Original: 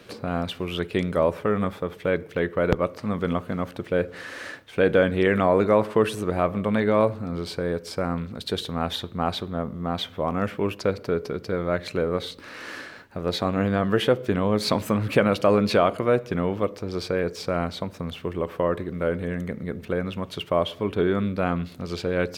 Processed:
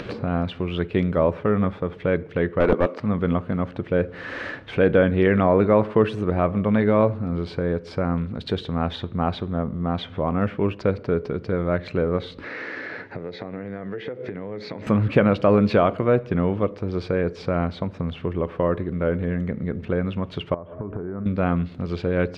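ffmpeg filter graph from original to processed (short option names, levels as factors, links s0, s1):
-filter_complex "[0:a]asettb=1/sr,asplit=3[s0][s1][s2];[s0]atrim=end=2.604[s3];[s1]atrim=start=2.6:end=3,asetpts=PTS-STARTPTS,afade=t=in:d=0.004:c=qsin,afade=t=out:st=0.396:d=0.004:c=qsin,highpass=f=220:w=0.5412,highpass=f=220:w=1.3066,acontrast=23,aeval=exprs='clip(val(0),-1,0.119)':c=same[s4];[s2]atrim=start=2.996[s5];[s3][s4]acrossfade=d=0.004:c1=hsin:c2=qsin[s6];[s6][s5]acrossfade=d=0.004:c1=qsin:c2=hsin,asettb=1/sr,asplit=3[s7][s8][s9];[s7]atrim=end=12.444[s10];[s8]atrim=start=12.44:end=14.87,asetpts=PTS-STARTPTS,afade=t=in:d=0.004:c=qsin,afade=t=out:st=2.426:d=0.004:c=qsin,bandreject=f=220:w=6.9,acompressor=threshold=0.0126:ratio=6:attack=3.2:release=140:knee=1:detection=peak,highpass=f=110:w=0.5412,highpass=f=110:w=1.3066,equalizer=f=140:t=q:w=4:g=-8,equalizer=f=450:t=q:w=4:g=5,equalizer=f=1100:t=q:w=4:g=-5,equalizer=f=2000:t=q:w=4:g=8,equalizer=f=3000:t=q:w=4:g=-6,lowpass=f=6300:w=0.5412,lowpass=f=6300:w=1.3066[s11];[s9]atrim=start=14.866[s12];[s10][s11]acrossfade=d=0.004:c1=hsin:c2=qsin[s13];[s13][s12]acrossfade=d=0.004:c1=qsin:c2=hsin,asettb=1/sr,asplit=3[s14][s15][s16];[s14]atrim=end=20.544[s17];[s15]atrim=start=20.54:end=21.26,asetpts=PTS-STARTPTS,afade=t=in:d=0.004:c=qsin,afade=t=out:st=0.716:d=0.004:c=qsin,aeval=exprs='val(0)+0.00501*sin(2*PI*630*n/s)':c=same,acompressor=threshold=0.0251:ratio=12:attack=3.2:release=140:knee=1:detection=peak,lowpass=f=1500:w=0.5412,lowpass=f=1500:w=1.3066[s18];[s16]atrim=start=21.256[s19];[s17][s18]acrossfade=d=0.004:c1=hsin:c2=qsin[s20];[s20][s19]acrossfade=d=0.004:c1=qsin:c2=hsin,lowpass=3000,lowshelf=f=250:g=7,acompressor=mode=upward:threshold=0.0631:ratio=2.5"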